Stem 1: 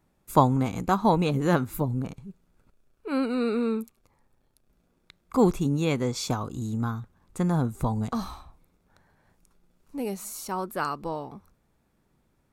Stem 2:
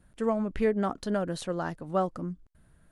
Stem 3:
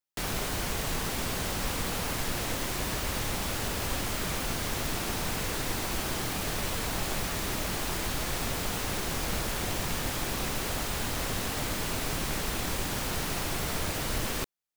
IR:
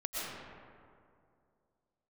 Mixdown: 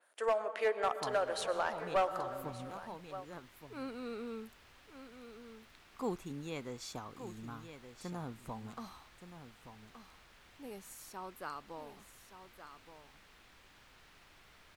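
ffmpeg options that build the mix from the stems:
-filter_complex "[0:a]adelay=650,volume=-13.5dB,asplit=2[a][b];[b]volume=-10.5dB[c];[1:a]highpass=f=480:w=0.5412,highpass=f=480:w=1.3066,volume=0dB,asplit=4[d][e][f][g];[e]volume=-13dB[h];[f]volume=-15.5dB[i];[2:a]highshelf=f=5.9k:g=-8,acrossover=split=89|380|1100|4500[j][k][l][m][n];[j]acompressor=threshold=-36dB:ratio=4[o];[k]acompressor=threshold=-49dB:ratio=4[p];[l]acompressor=threshold=-54dB:ratio=4[q];[m]acompressor=threshold=-42dB:ratio=4[r];[n]acompressor=threshold=-55dB:ratio=4[s];[o][p][q][r][s]amix=inputs=5:normalize=0,adelay=850,volume=-19.5dB[t];[g]apad=whole_len=581177[u];[a][u]sidechaincompress=threshold=-45dB:ratio=8:attack=42:release=267[v];[3:a]atrim=start_sample=2205[w];[h][w]afir=irnorm=-1:irlink=0[x];[c][i]amix=inputs=2:normalize=0,aecho=0:1:1172:1[y];[v][d][t][x][y]amix=inputs=5:normalize=0,lowshelf=f=230:g=-9.5,asoftclip=type=hard:threshold=-24.5dB,adynamicequalizer=threshold=0.00178:dfrequency=5100:dqfactor=0.7:tfrequency=5100:tqfactor=0.7:attack=5:release=100:ratio=0.375:range=1.5:mode=cutabove:tftype=highshelf"

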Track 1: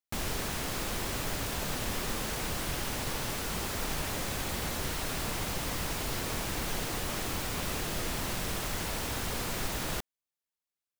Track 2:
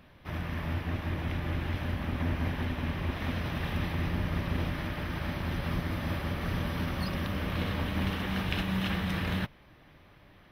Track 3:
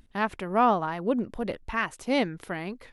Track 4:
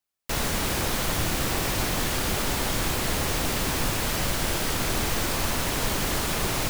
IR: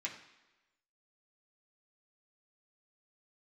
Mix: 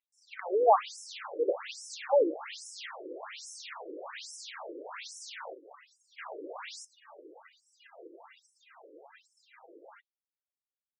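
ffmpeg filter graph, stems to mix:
-filter_complex "[0:a]volume=-7dB,asplit=2[a][b];[b]volume=-10.5dB[c];[1:a]volume=-18dB[d];[2:a]acontrast=31,volume=-1dB,asplit=2[e][f];[f]volume=-7dB[g];[3:a]adelay=150,volume=-6.5dB,asplit=3[h][i][j];[h]atrim=end=5.55,asetpts=PTS-STARTPTS,afade=t=out:st=5.546:d=0.004:c=hsin[k];[i]atrim=start=5.55:end=6.18,asetpts=PTS-STARTPTS,volume=0[l];[j]atrim=start=6.18,asetpts=PTS-STARTPTS,afade=t=in:d=0.004:c=hsin[m];[k][l][m]concat=n=3:v=0:a=1[n];[4:a]atrim=start_sample=2205[o];[c][g]amix=inputs=2:normalize=0[p];[p][o]afir=irnorm=-1:irlink=0[q];[a][d][e][n][q]amix=inputs=5:normalize=0,afftdn=nr=29:nf=-41,afftfilt=real='re*between(b*sr/1024,390*pow(7500/390,0.5+0.5*sin(2*PI*1.2*pts/sr))/1.41,390*pow(7500/390,0.5+0.5*sin(2*PI*1.2*pts/sr))*1.41)':imag='im*between(b*sr/1024,390*pow(7500/390,0.5+0.5*sin(2*PI*1.2*pts/sr))/1.41,390*pow(7500/390,0.5+0.5*sin(2*PI*1.2*pts/sr))*1.41)':win_size=1024:overlap=0.75"

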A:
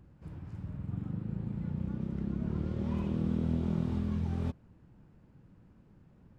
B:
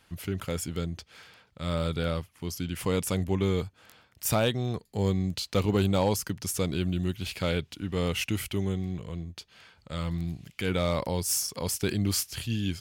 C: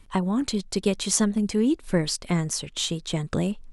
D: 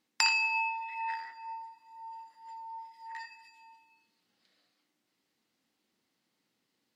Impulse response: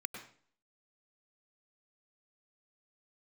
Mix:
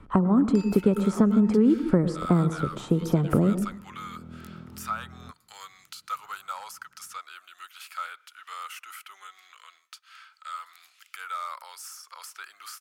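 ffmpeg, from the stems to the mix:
-filter_complex "[0:a]adelay=800,volume=-11.5dB[a];[1:a]highpass=f=1.2k:w=0.5412,highpass=f=1.2k:w=1.3066,adynamicequalizer=threshold=0.00355:dfrequency=2300:dqfactor=0.7:tfrequency=2300:tqfactor=0.7:attack=5:release=100:ratio=0.375:range=2.5:mode=cutabove:tftype=highshelf,adelay=550,volume=2dB,asplit=2[b][c];[c]volume=-20.5dB[d];[2:a]lowpass=f=2.8k:p=1,tiltshelf=f=1.5k:g=9,volume=1.5dB,asplit=3[e][f][g];[f]volume=-7dB[h];[3:a]adelay=350,volume=-13.5dB[i];[g]apad=whole_len=316743[j];[a][j]sidechaincompress=threshold=-19dB:ratio=8:attack=16:release=1100[k];[4:a]atrim=start_sample=2205[l];[d][h]amix=inputs=2:normalize=0[m];[m][l]afir=irnorm=-1:irlink=0[n];[k][b][e][i][n]amix=inputs=5:normalize=0,highpass=f=81:p=1,equalizer=f=1.3k:w=4.9:g=13.5,acrossover=split=320|1300|6900[o][p][q][r];[o]acompressor=threshold=-21dB:ratio=4[s];[p]acompressor=threshold=-26dB:ratio=4[t];[q]acompressor=threshold=-48dB:ratio=4[u];[r]acompressor=threshold=-48dB:ratio=4[v];[s][t][u][v]amix=inputs=4:normalize=0"

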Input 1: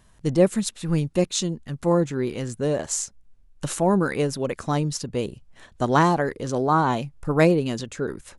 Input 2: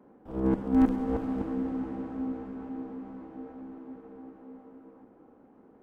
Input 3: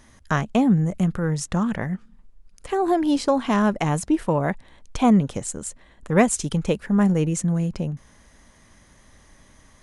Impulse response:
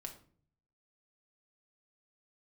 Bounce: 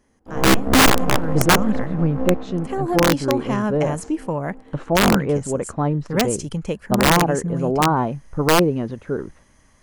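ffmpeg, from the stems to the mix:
-filter_complex "[0:a]lowpass=1.3k,agate=range=-14dB:threshold=-45dB:ratio=16:detection=peak,adelay=1100,volume=3dB[a];[1:a]agate=range=-15dB:threshold=-50dB:ratio=16:detection=peak,aeval=exprs='0.237*(cos(1*acos(clip(val(0)/0.237,-1,1)))-cos(1*PI/2))+0.106*(cos(6*acos(clip(val(0)/0.237,-1,1)))-cos(6*PI/2))':c=same,volume=3dB,asplit=2[b][c];[c]volume=-6.5dB[d];[2:a]bandreject=f=3.7k:w=6.2,volume=-3dB,afade=t=in:st=0.95:d=0.4:silence=0.316228,asplit=2[e][f];[f]apad=whole_len=257002[g];[b][g]sidechaincompress=threshold=-28dB:ratio=8:attack=37:release=132[h];[3:a]atrim=start_sample=2205[i];[d][i]afir=irnorm=-1:irlink=0[j];[a][h][e][j]amix=inputs=4:normalize=0,aeval=exprs='(mod(2.24*val(0)+1,2)-1)/2.24':c=same"

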